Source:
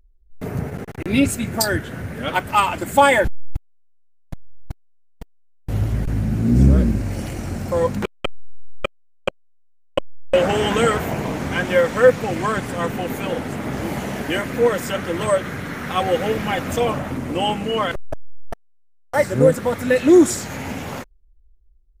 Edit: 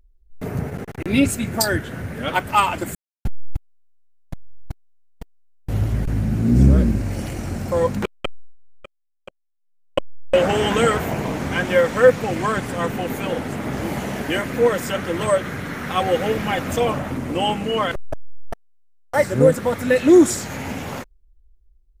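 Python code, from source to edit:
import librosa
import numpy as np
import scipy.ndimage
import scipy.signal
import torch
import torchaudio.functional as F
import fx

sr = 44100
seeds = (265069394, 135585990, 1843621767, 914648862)

y = fx.edit(x, sr, fx.silence(start_s=2.95, length_s=0.3),
    fx.fade_down_up(start_s=8.16, length_s=1.82, db=-18.5, fade_s=0.4), tone=tone)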